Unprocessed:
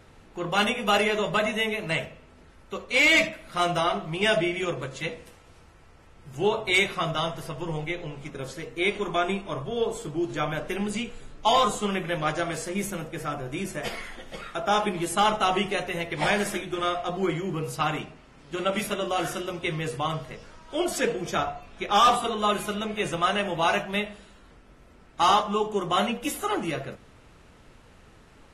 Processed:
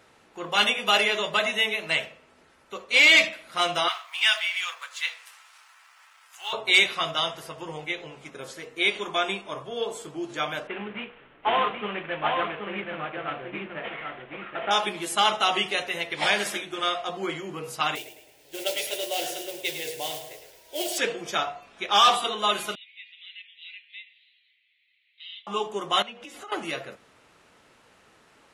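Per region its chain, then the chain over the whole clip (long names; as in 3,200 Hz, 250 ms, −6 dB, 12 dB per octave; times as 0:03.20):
0:03.88–0:06.53: mu-law and A-law mismatch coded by mu + high-pass filter 1,000 Hz 24 dB per octave
0:10.67–0:14.71: variable-slope delta modulation 16 kbit/s + single-tap delay 777 ms −4.5 dB
0:17.95–0:20.98: noise that follows the level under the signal 11 dB + phaser with its sweep stopped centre 500 Hz, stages 4 + repeating echo 106 ms, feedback 44%, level −8.5 dB
0:22.75–0:25.47: Chebyshev band-pass filter 2,000–4,100 Hz, order 4 + downward compressor 1.5 to 1, threshold −60 dBFS
0:26.02–0:26.52: low-pass filter 5,700 Hz + downward compressor 8 to 1, threshold −36 dBFS
whole clip: high-pass filter 520 Hz 6 dB per octave; dynamic equaliser 3,600 Hz, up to +7 dB, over −41 dBFS, Q 1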